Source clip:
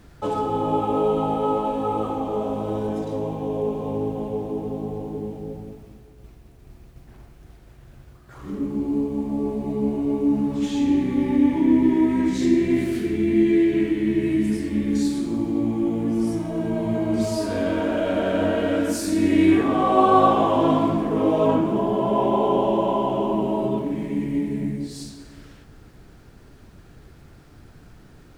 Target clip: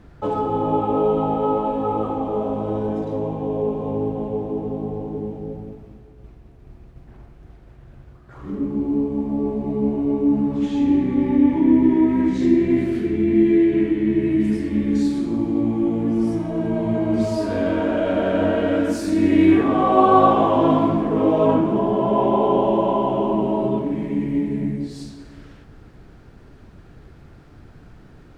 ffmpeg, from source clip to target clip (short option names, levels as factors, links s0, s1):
-af "asetnsamples=n=441:p=0,asendcmd='14.4 lowpass f 2700',lowpass=f=1700:p=1,volume=1.33"